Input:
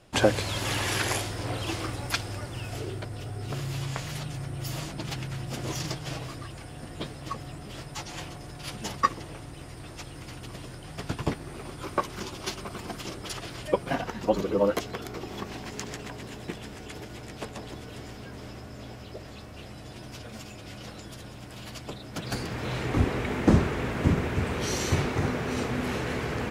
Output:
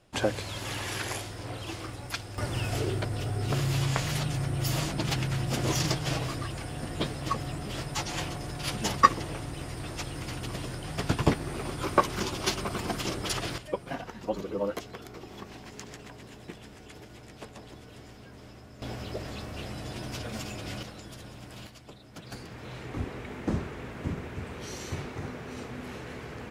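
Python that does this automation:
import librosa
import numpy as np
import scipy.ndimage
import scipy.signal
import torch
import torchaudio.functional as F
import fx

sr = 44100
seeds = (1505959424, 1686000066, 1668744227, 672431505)

y = fx.gain(x, sr, db=fx.steps((0.0, -6.0), (2.38, 5.0), (13.58, -7.0), (18.82, 5.0), (20.83, -2.0), (21.67, -10.0)))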